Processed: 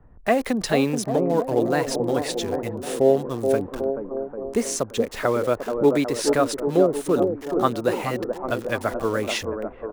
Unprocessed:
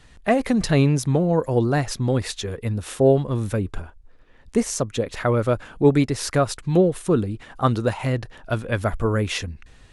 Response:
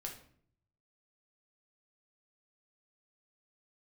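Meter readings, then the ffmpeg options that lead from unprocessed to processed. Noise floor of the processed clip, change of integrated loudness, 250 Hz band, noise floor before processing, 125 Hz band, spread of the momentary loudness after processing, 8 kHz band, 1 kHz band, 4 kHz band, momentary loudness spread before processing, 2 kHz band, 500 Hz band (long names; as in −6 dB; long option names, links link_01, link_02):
−43 dBFS, −1.0 dB, −2.0 dB, −50 dBFS, −10.5 dB, 8 LU, 0.0 dB, +1.0 dB, 0.0 dB, 10 LU, 0.0 dB, +1.5 dB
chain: -filter_complex "[0:a]acrossover=split=240|1200[link_01][link_02][link_03];[link_01]acompressor=threshold=-37dB:ratio=6[link_04];[link_02]aecho=1:1:430|795.5|1106|1370|1595:0.631|0.398|0.251|0.158|0.1[link_05];[link_03]acrusher=bits=6:mix=0:aa=0.000001[link_06];[link_04][link_05][link_06]amix=inputs=3:normalize=0"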